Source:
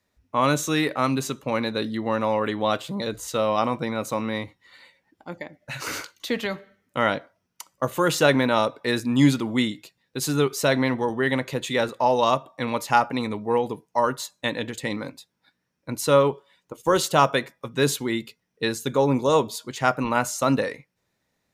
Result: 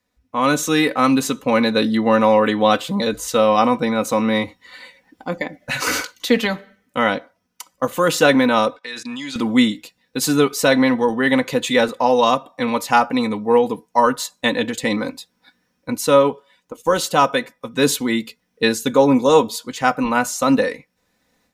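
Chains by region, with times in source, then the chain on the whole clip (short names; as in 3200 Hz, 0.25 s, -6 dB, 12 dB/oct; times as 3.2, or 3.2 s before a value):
8.76–9.36 tilt shelf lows -9 dB, about 850 Hz + level quantiser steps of 18 dB + BPF 110–6000 Hz
whole clip: comb 4 ms, depth 56%; AGC; gain -1 dB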